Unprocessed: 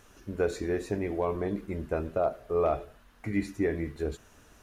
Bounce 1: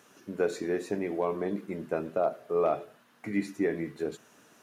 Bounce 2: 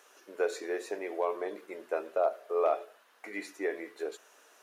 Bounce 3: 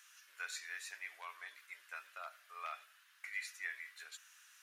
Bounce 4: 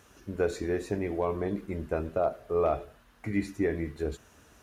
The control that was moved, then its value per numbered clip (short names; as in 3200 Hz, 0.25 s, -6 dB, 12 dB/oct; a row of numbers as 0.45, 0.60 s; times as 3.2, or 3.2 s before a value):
HPF, cutoff: 150, 420, 1500, 44 Hz